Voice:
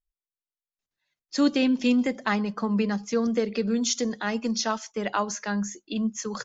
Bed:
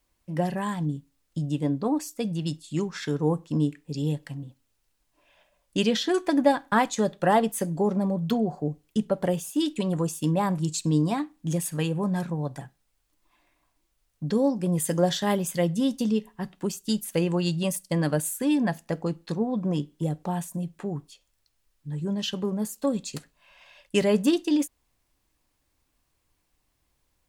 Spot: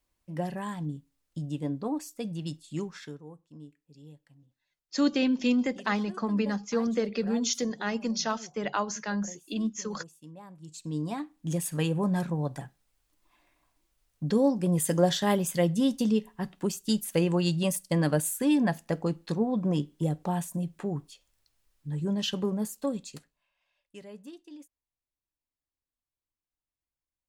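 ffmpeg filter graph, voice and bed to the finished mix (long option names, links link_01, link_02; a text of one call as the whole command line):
ffmpeg -i stem1.wav -i stem2.wav -filter_complex "[0:a]adelay=3600,volume=-3dB[link_01];[1:a]volume=16.5dB,afade=type=out:start_time=2.84:duration=0.39:silence=0.141254,afade=type=in:start_time=10.59:duration=1.31:silence=0.0749894,afade=type=out:start_time=22.42:duration=1.09:silence=0.0668344[link_02];[link_01][link_02]amix=inputs=2:normalize=0" out.wav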